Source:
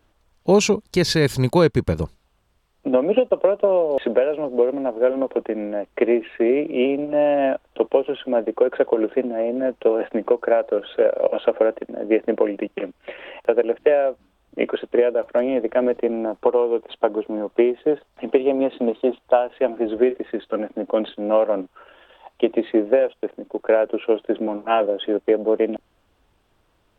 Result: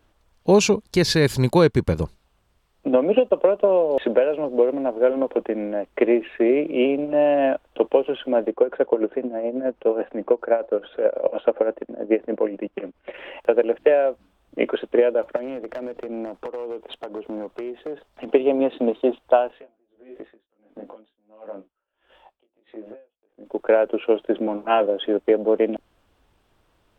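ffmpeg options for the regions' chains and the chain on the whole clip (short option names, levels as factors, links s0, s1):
-filter_complex "[0:a]asettb=1/sr,asplit=3[s0][s1][s2];[s0]atrim=end=8.514[s3];[s1]atrim=start=8.51:end=13.14,asetpts=PTS-STARTPTS,afade=t=in:d=0.004:c=qsin,afade=t=out:st=4.626:d=0.004:c=qsin,highshelf=f=3300:g=-11,tremolo=f=9.4:d=0.61[s4];[s2]atrim=start=13.136[s5];[s3][s4]acrossfade=d=0.004:c1=hsin:c2=qsin[s6];[s6][s5]acrossfade=d=0.004:c1=qsin:c2=hsin,asettb=1/sr,asplit=3[s7][s8][s9];[s7]atrim=end=15.364[s10];[s8]atrim=start=15.36:end=18.34,asetpts=PTS-STARTPTS,afade=t=in:d=0.004:c=qsin,afade=t=out:st=2.976:d=0.004:c=qsin,acompressor=threshold=0.0501:ratio=12:attack=3.2:release=140:knee=1:detection=peak,asoftclip=type=hard:threshold=0.0562[s11];[s9]atrim=start=18.336[s12];[s10][s11]acrossfade=d=0.004:c1=hsin:c2=qsin[s13];[s13][s12]acrossfade=d=0.004:c1=qsin:c2=hsin,asettb=1/sr,asplit=3[s14][s15][s16];[s14]atrim=end=19.514[s17];[s15]atrim=start=19.51:end=23.46,asetpts=PTS-STARTPTS,afade=t=in:d=0.004:c=qsin,afade=t=out:st=3.946:d=0.004:c=qsin,acompressor=threshold=0.0447:ratio=12:attack=3.2:release=140:knee=1:detection=peak,flanger=delay=18:depth=2.2:speed=1.2,aeval=exprs='val(0)*pow(10,-35*(0.5-0.5*cos(2*PI*1.5*n/s))/20)':c=same[s18];[s16]atrim=start=23.456[s19];[s17][s18]acrossfade=d=0.004:c1=hsin:c2=qsin[s20];[s20][s19]acrossfade=d=0.004:c1=qsin:c2=hsin"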